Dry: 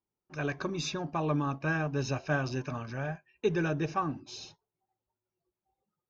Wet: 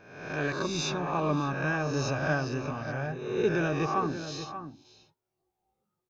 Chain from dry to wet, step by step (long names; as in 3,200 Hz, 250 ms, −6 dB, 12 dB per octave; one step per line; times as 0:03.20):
peak hold with a rise ahead of every peak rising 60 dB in 0.89 s
0:02.33–0:03.54: dynamic equaliser 4,400 Hz, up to −4 dB, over −49 dBFS, Q 0.81
slap from a distant wall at 100 metres, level −10 dB